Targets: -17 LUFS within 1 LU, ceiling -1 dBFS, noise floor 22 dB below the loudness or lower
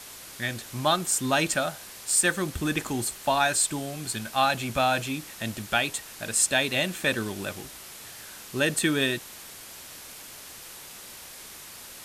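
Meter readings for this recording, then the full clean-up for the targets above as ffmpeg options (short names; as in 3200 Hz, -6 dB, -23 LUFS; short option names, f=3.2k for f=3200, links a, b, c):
noise floor -44 dBFS; noise floor target -48 dBFS; loudness -26.0 LUFS; peak -9.0 dBFS; loudness target -17.0 LUFS
-> -af "afftdn=nr=6:nf=-44"
-af "volume=9dB,alimiter=limit=-1dB:level=0:latency=1"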